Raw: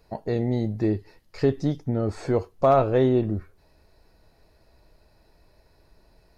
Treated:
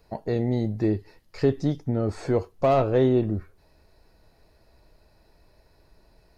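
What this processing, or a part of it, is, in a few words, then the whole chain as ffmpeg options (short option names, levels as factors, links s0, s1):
one-band saturation: -filter_complex "[0:a]acrossover=split=600|3800[s0][s1][s2];[s1]asoftclip=type=tanh:threshold=0.0794[s3];[s0][s3][s2]amix=inputs=3:normalize=0"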